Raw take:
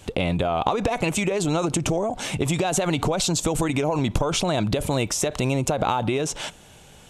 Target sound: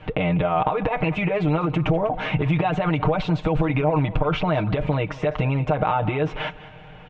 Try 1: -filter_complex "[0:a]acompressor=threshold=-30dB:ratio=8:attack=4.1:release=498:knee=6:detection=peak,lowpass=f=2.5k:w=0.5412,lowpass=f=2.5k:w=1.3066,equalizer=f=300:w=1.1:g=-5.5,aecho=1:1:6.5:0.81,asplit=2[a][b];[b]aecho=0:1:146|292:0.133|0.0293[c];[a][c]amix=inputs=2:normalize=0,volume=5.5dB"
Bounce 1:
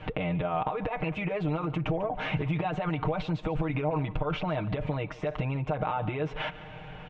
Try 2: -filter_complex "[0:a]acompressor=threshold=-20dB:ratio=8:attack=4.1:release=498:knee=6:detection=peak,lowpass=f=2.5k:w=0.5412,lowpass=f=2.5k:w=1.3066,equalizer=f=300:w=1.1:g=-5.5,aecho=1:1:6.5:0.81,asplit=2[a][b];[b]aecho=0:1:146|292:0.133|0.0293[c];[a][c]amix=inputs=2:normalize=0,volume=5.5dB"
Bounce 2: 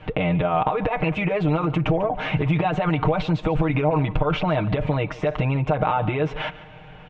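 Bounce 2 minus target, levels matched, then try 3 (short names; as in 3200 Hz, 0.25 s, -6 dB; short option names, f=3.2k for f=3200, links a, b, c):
echo 52 ms early
-filter_complex "[0:a]acompressor=threshold=-20dB:ratio=8:attack=4.1:release=498:knee=6:detection=peak,lowpass=f=2.5k:w=0.5412,lowpass=f=2.5k:w=1.3066,equalizer=f=300:w=1.1:g=-5.5,aecho=1:1:6.5:0.81,asplit=2[a][b];[b]aecho=0:1:198|396:0.133|0.0293[c];[a][c]amix=inputs=2:normalize=0,volume=5.5dB"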